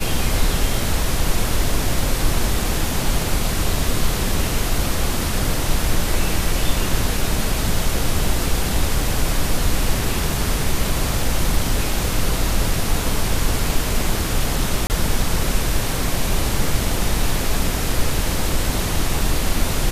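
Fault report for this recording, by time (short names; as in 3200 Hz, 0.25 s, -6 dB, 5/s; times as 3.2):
14.87–14.9 gap 29 ms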